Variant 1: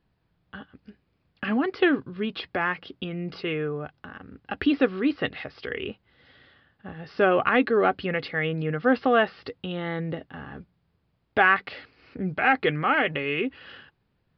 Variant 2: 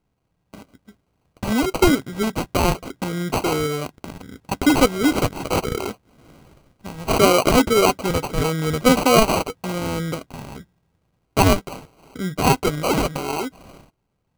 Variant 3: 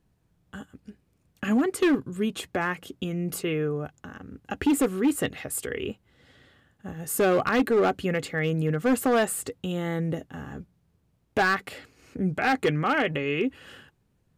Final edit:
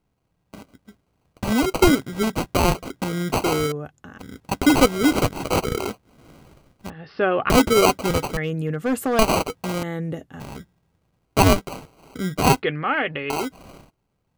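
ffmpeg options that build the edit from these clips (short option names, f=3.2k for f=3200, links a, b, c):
-filter_complex "[2:a]asplit=3[a][b][c];[0:a]asplit=2[d][e];[1:a]asplit=6[f][g][h][i][j][k];[f]atrim=end=3.722[l];[a]atrim=start=3.718:end=4.192[m];[g]atrim=start=4.188:end=6.902[n];[d]atrim=start=6.898:end=7.502[o];[h]atrim=start=7.498:end=8.372[p];[b]atrim=start=8.368:end=9.192[q];[i]atrim=start=9.188:end=9.832[r];[c]atrim=start=9.828:end=10.402[s];[j]atrim=start=10.398:end=12.622[t];[e]atrim=start=12.618:end=13.302[u];[k]atrim=start=13.298[v];[l][m]acrossfade=d=0.004:c1=hsin:c2=hsin[w];[w][n]acrossfade=d=0.004:c1=hsin:c2=hsin[x];[x][o]acrossfade=d=0.004:c1=hsin:c2=hsin[y];[y][p]acrossfade=d=0.004:c1=hsin:c2=hsin[z];[z][q]acrossfade=d=0.004:c1=hsin:c2=hsin[aa];[aa][r]acrossfade=d=0.004:c1=hsin:c2=hsin[ab];[ab][s]acrossfade=d=0.004:c1=hsin:c2=hsin[ac];[ac][t]acrossfade=d=0.004:c1=hsin:c2=hsin[ad];[ad][u]acrossfade=d=0.004:c1=hsin:c2=hsin[ae];[ae][v]acrossfade=d=0.004:c1=hsin:c2=hsin"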